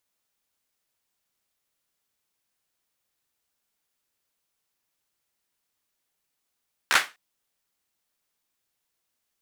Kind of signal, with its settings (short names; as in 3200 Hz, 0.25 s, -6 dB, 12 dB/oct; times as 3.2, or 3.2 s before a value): hand clap length 0.25 s, apart 14 ms, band 1600 Hz, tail 0.25 s